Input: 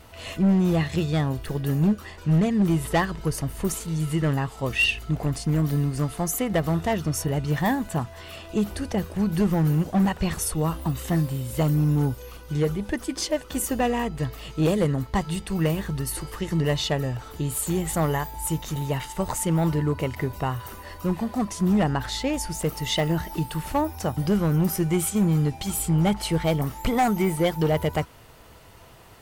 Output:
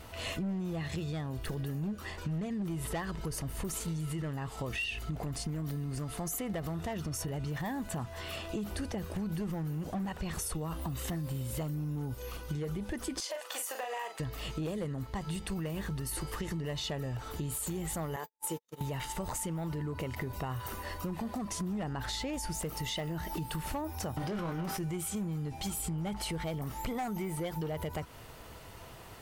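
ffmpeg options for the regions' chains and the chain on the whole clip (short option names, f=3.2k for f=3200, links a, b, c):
-filter_complex "[0:a]asettb=1/sr,asplit=3[a][b][c];[a]atrim=end=13.204[d];[b]atrim=start=13.2:end=14.2,asetpts=PTS-STARTPTS,afade=t=in:d=0.004:c=qsin,afade=t=out:st=0.996:d=0.004:c=qsin,highpass=f=590:w=0.5412,highpass=f=590:w=1.3066,acompressor=threshold=-33dB:ratio=6:attack=3.2:release=140:knee=1:detection=peak,asplit=2[e][f];[f]adelay=40,volume=-6dB[g];[e][g]amix=inputs=2:normalize=0,atrim=end_sample=44100[h];[c]atrim=start=14.196[i];[d][h]acrossfade=d=0.004:c1=hsin:c2=qsin[j];[j][i]acrossfade=d=0.004:c1=qsin:c2=hsin,asettb=1/sr,asplit=3[k][l][m];[k]atrim=end=18.164[n];[l]atrim=start=18.16:end=18.81,asetpts=PTS-STARTPTS,afade=t=in:d=0.004:c=qsin,afade=t=out:st=0.646:d=0.004:c=qsin,highpass=260,agate=range=-57dB:threshold=-33dB:ratio=16:release=100:detection=peak,equalizer=f=470:t=o:w=0.35:g=9.5[o];[m]atrim=start=18.806[p];[n][o]acrossfade=d=0.004:c1=hsin:c2=qsin[q];[q][p]acrossfade=d=0.004:c1=qsin:c2=hsin,asettb=1/sr,asplit=3[r][s][t];[r]atrim=end=24.174[u];[s]atrim=start=24.17:end=24.77,asetpts=PTS-STARTPTS,afade=t=in:d=0.004:c=qsin,afade=t=out:st=0.596:d=0.004:c=qsin,highshelf=f=8.7k:g=-6,asplit=2[v][w];[w]highpass=f=720:p=1,volume=22dB,asoftclip=type=tanh:threshold=-15dB[x];[v][x]amix=inputs=2:normalize=0,lowpass=f=2.5k:p=1,volume=-6dB,asplit=2[y][z];[z]adelay=23,volume=-7dB[aa];[y][aa]amix=inputs=2:normalize=0,atrim=end_sample=26460[ab];[t]atrim=start=24.766[ac];[u][ab]acrossfade=d=0.004:c1=hsin:c2=qsin[ad];[ad][ac]acrossfade=d=0.004:c1=qsin:c2=hsin,alimiter=limit=-22.5dB:level=0:latency=1:release=30,acompressor=threshold=-33dB:ratio=6"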